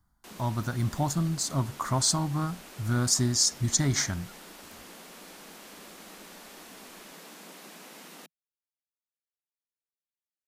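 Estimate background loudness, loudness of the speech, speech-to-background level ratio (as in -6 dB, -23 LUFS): -46.5 LUFS, -27.0 LUFS, 19.5 dB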